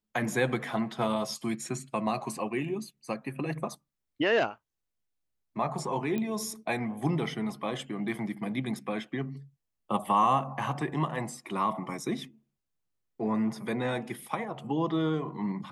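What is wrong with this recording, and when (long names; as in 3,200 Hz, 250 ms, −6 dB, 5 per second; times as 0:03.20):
0:06.18: click −20 dBFS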